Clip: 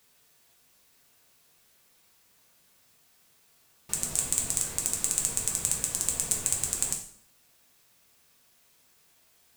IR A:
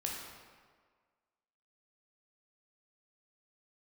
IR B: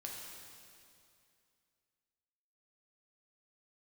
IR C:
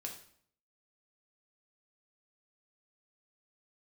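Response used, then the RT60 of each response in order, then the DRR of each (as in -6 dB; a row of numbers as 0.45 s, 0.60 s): C; 1.7 s, 2.5 s, 0.60 s; -2.0 dB, -2.5 dB, 0.5 dB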